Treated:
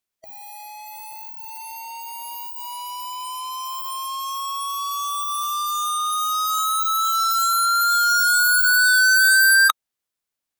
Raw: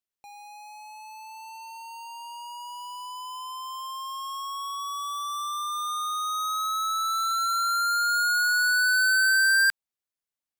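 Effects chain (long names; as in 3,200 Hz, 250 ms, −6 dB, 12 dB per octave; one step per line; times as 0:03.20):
formants moved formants −4 semitones
level +6.5 dB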